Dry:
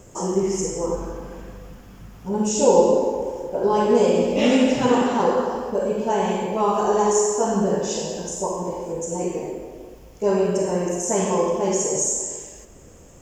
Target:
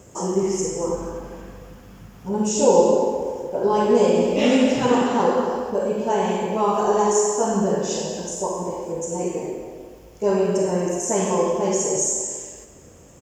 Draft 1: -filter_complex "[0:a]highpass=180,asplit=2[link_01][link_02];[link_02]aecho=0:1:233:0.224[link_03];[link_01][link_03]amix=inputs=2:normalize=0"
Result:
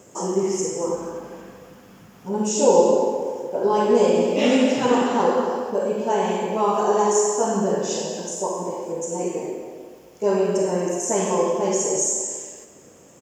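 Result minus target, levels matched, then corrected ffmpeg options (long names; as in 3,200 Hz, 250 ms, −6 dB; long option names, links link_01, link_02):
125 Hz band −2.5 dB
-filter_complex "[0:a]highpass=55,asplit=2[link_01][link_02];[link_02]aecho=0:1:233:0.224[link_03];[link_01][link_03]amix=inputs=2:normalize=0"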